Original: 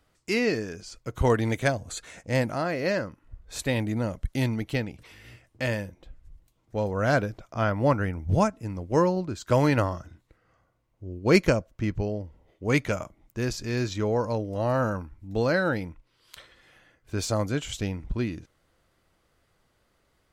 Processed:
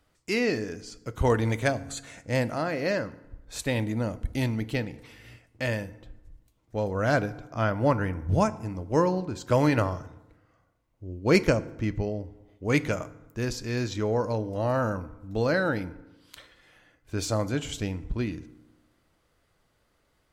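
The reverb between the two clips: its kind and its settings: FDN reverb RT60 1 s, low-frequency decay 1.2×, high-frequency decay 0.6×, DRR 14 dB; gain -1 dB

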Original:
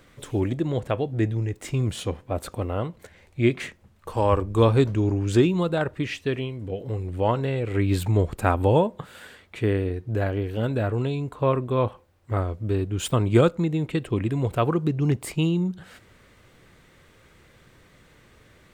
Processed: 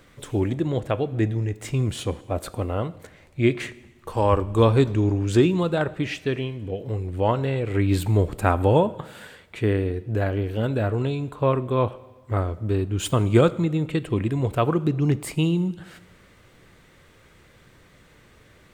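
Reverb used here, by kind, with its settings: plate-style reverb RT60 1.2 s, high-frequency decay 1×, DRR 16.5 dB; gain +1 dB

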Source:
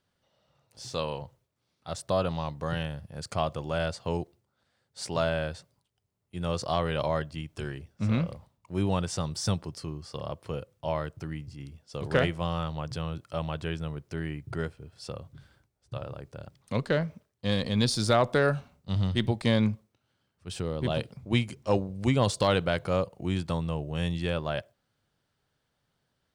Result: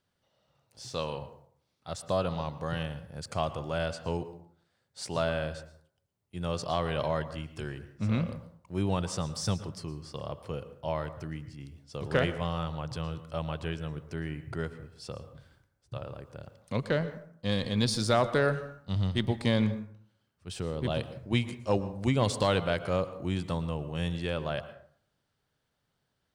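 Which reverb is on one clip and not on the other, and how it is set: plate-style reverb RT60 0.59 s, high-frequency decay 0.5×, pre-delay 0.1 s, DRR 13 dB; gain -2 dB

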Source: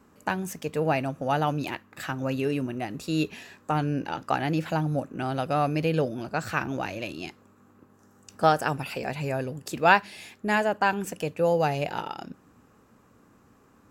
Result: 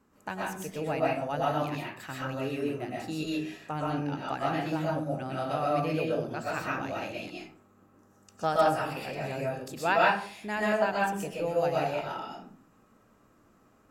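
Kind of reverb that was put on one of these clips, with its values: digital reverb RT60 0.48 s, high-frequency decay 0.55×, pre-delay 85 ms, DRR -5 dB; gain -9 dB

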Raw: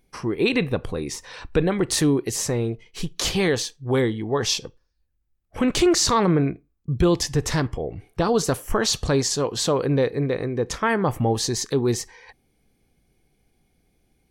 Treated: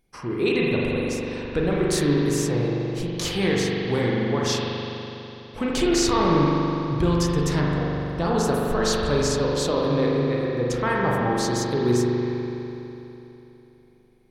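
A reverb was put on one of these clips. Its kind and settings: spring tank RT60 3.3 s, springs 41 ms, chirp 45 ms, DRR -4 dB; gain -5 dB

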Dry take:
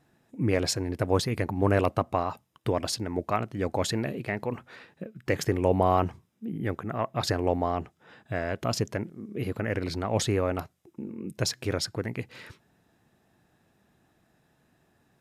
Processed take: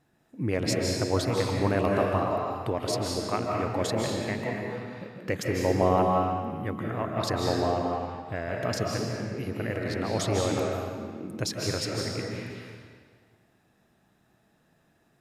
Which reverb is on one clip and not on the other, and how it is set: digital reverb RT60 1.7 s, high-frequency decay 0.9×, pre-delay 0.115 s, DRR -1.5 dB; gain -3 dB

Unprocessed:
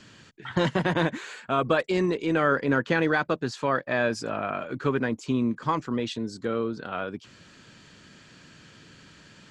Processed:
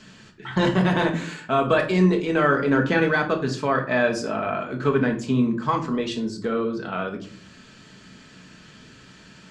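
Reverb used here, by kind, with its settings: shoebox room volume 430 m³, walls furnished, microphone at 1.5 m; gain +1.5 dB

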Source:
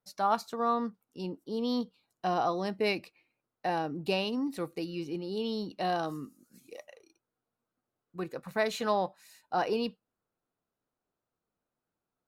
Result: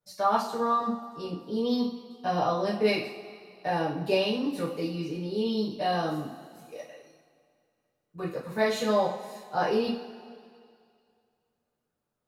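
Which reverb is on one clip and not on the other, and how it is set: two-slope reverb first 0.45 s, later 2.3 s, from -17 dB, DRR -9 dB; gain -6 dB

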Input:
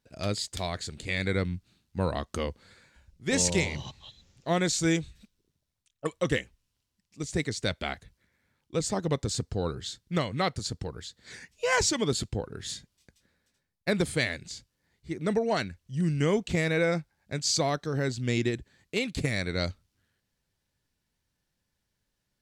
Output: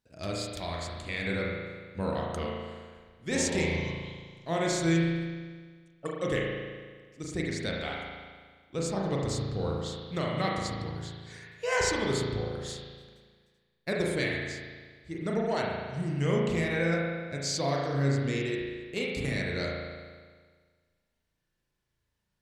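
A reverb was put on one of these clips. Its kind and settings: spring tank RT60 1.6 s, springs 36 ms, chirp 40 ms, DRR -3 dB; gain -5.5 dB

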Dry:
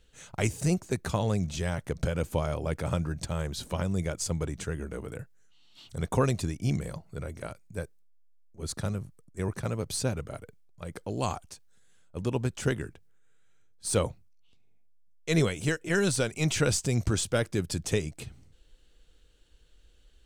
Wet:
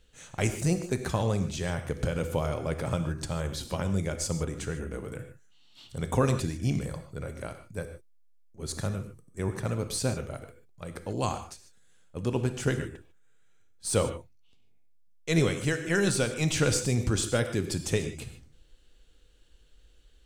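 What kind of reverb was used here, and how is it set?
non-linear reverb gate 0.17 s flat, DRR 7.5 dB

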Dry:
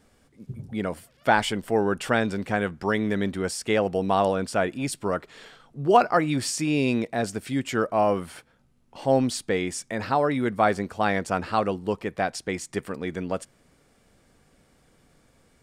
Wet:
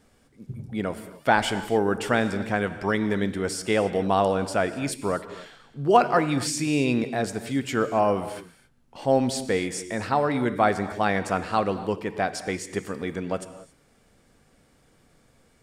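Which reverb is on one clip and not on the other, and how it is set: non-linear reverb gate 0.3 s flat, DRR 11 dB

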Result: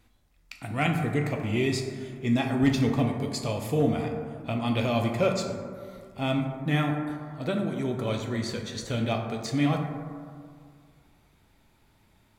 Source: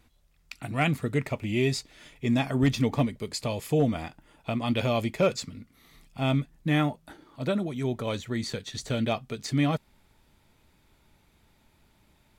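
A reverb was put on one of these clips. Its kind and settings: plate-style reverb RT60 2.1 s, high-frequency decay 0.3×, DRR 2 dB; gain -1.5 dB

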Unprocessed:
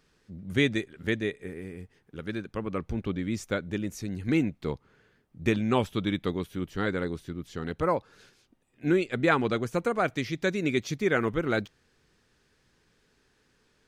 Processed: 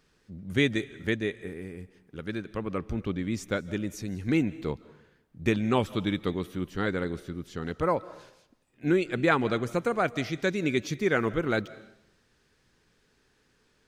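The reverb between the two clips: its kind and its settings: digital reverb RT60 0.78 s, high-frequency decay 1×, pre-delay 0.115 s, DRR 18.5 dB

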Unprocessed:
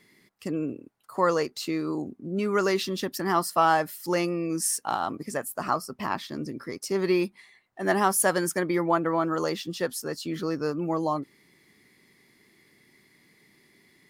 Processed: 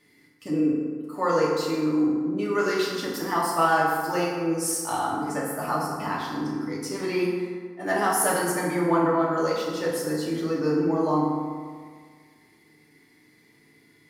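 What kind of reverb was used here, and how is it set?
FDN reverb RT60 1.8 s, low-frequency decay 1×, high-frequency decay 0.5×, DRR -5.5 dB; gain -5 dB

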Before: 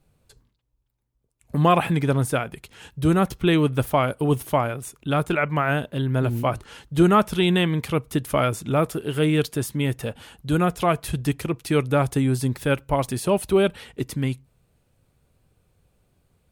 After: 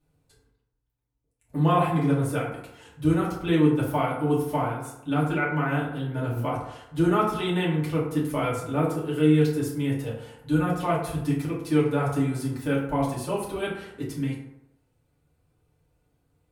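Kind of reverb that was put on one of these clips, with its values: FDN reverb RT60 0.86 s, low-frequency decay 0.85×, high-frequency decay 0.45×, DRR -6.5 dB; gain -12 dB

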